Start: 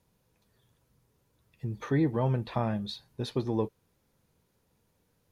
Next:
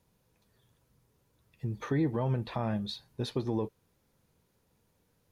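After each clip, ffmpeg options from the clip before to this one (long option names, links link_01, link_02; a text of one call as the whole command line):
ffmpeg -i in.wav -af "alimiter=limit=-20.5dB:level=0:latency=1:release=90" out.wav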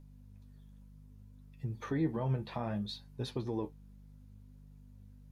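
ffmpeg -i in.wav -af "aeval=exprs='val(0)+0.00398*(sin(2*PI*50*n/s)+sin(2*PI*2*50*n/s)/2+sin(2*PI*3*50*n/s)/3+sin(2*PI*4*50*n/s)/4+sin(2*PI*5*50*n/s)/5)':channel_layout=same,flanger=delay=6.9:depth=7.7:regen=51:speed=0.64:shape=sinusoidal" out.wav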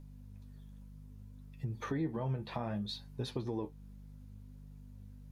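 ffmpeg -i in.wav -af "acompressor=threshold=-40dB:ratio=2,volume=3.5dB" out.wav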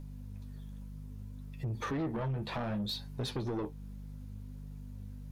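ffmpeg -i in.wav -af "asoftclip=type=tanh:threshold=-37.5dB,volume=7dB" out.wav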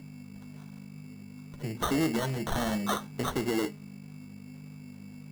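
ffmpeg -i in.wav -af "highpass=frequency=160:width=0.5412,highpass=frequency=160:width=1.3066,equalizer=frequency=540:width_type=q:width=4:gain=-4,equalizer=frequency=1000:width_type=q:width=4:gain=-4,equalizer=frequency=2400:width_type=q:width=4:gain=10,lowpass=frequency=5300:width=0.5412,lowpass=frequency=5300:width=1.3066,bandreject=frequency=208:width_type=h:width=4,bandreject=frequency=416:width_type=h:width=4,bandreject=frequency=624:width_type=h:width=4,bandreject=frequency=832:width_type=h:width=4,bandreject=frequency=1040:width_type=h:width=4,bandreject=frequency=1248:width_type=h:width=4,bandreject=frequency=1456:width_type=h:width=4,bandreject=frequency=1664:width_type=h:width=4,bandreject=frequency=1872:width_type=h:width=4,bandreject=frequency=2080:width_type=h:width=4,bandreject=frequency=2288:width_type=h:width=4,bandreject=frequency=2496:width_type=h:width=4,bandreject=frequency=2704:width_type=h:width=4,bandreject=frequency=2912:width_type=h:width=4,bandreject=frequency=3120:width_type=h:width=4,bandreject=frequency=3328:width_type=h:width=4,bandreject=frequency=3536:width_type=h:width=4,bandreject=frequency=3744:width_type=h:width=4,acrusher=samples=18:mix=1:aa=0.000001,volume=8dB" out.wav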